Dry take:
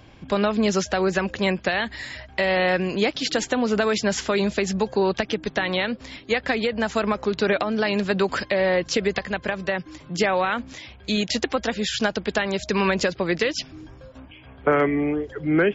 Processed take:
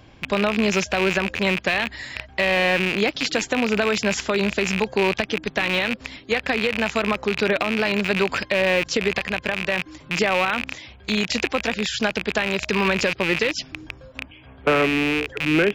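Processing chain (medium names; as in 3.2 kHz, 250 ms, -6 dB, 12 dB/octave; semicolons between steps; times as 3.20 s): rattle on loud lows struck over -38 dBFS, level -12 dBFS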